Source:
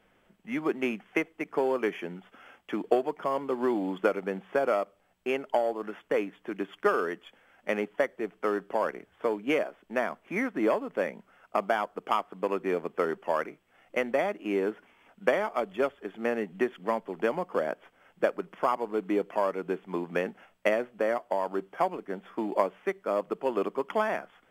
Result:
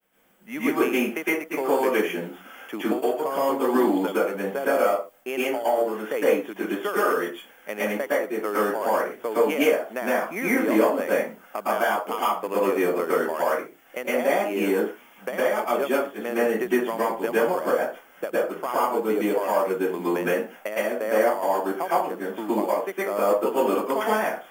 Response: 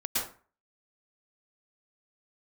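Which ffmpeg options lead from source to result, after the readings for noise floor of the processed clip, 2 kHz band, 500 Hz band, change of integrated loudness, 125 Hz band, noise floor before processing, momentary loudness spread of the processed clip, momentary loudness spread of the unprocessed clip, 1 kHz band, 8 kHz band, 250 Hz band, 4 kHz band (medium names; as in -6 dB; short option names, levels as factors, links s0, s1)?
-52 dBFS, +6.5 dB, +6.0 dB, +6.0 dB, +4.0 dB, -67 dBFS, 8 LU, 7 LU, +6.0 dB, no reading, +6.5 dB, +8.0 dB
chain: -filter_complex "[0:a]aemphasis=mode=production:type=bsi,agate=range=0.0224:threshold=0.00112:ratio=3:detection=peak,equalizer=f=2400:w=0.37:g=-4,alimiter=limit=0.112:level=0:latency=1:release=456[s0];[1:a]atrim=start_sample=2205,afade=t=out:st=0.31:d=0.01,atrim=end_sample=14112[s1];[s0][s1]afir=irnorm=-1:irlink=0,volume=1.58"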